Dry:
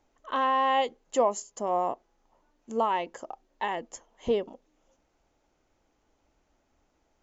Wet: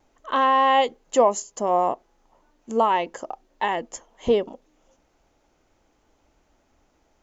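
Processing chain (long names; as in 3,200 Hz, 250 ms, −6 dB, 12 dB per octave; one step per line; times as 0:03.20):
pitch vibrato 0.53 Hz 9.9 cents
level +6.5 dB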